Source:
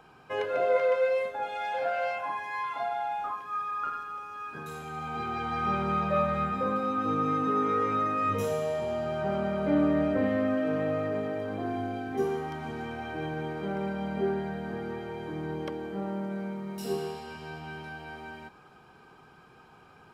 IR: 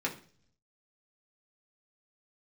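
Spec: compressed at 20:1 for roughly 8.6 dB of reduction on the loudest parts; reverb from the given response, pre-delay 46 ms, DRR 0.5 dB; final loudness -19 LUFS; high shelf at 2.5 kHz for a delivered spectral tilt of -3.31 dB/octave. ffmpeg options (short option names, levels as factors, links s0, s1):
-filter_complex "[0:a]highshelf=f=2500:g=-8.5,acompressor=threshold=0.0355:ratio=20,asplit=2[s0][s1];[1:a]atrim=start_sample=2205,adelay=46[s2];[s1][s2]afir=irnorm=-1:irlink=0,volume=0.501[s3];[s0][s3]amix=inputs=2:normalize=0,volume=4.73"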